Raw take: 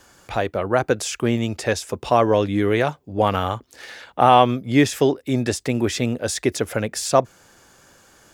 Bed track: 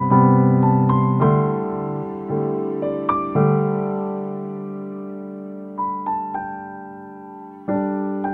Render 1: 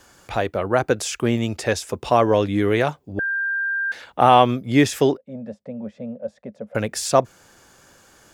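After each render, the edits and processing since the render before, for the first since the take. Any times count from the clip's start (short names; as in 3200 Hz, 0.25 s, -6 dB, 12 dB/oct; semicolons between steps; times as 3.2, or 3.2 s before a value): 3.19–3.92 bleep 1590 Hz -20.5 dBFS; 5.17–6.75 double band-pass 340 Hz, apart 1.4 oct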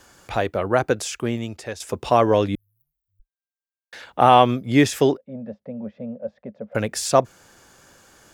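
0.76–1.8 fade out, to -12.5 dB; 2.55–3.93 inverse Chebyshev band-stop 200–5000 Hz, stop band 80 dB; 5.24–6.72 air absorption 230 m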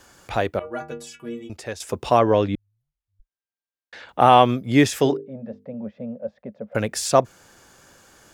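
0.59–1.5 metallic resonator 71 Hz, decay 0.64 s, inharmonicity 0.03; 2.19–4.09 air absorption 95 m; 5.01–5.74 notches 50/100/150/200/250/300/350/400/450 Hz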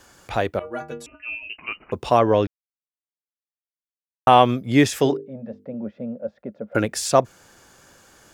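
1.06–1.92 inverted band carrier 2900 Hz; 2.47–4.27 mute; 5.59–6.85 small resonant body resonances 330/1400 Hz, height 11 dB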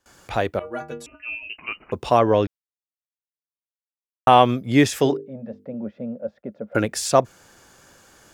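gate with hold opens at -43 dBFS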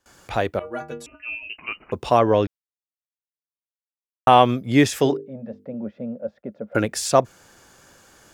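nothing audible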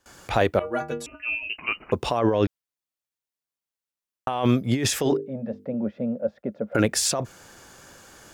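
negative-ratio compressor -21 dBFS, ratio -1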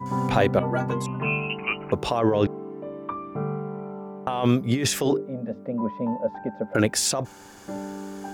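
add bed track -12.5 dB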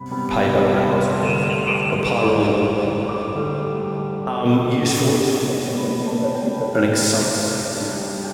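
on a send: feedback echo 0.377 s, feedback 51%, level -9 dB; on the sum: plate-style reverb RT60 4.4 s, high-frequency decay 0.9×, DRR -4 dB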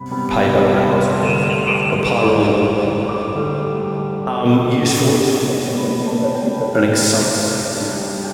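gain +3 dB; limiter -2 dBFS, peak gain reduction 1.5 dB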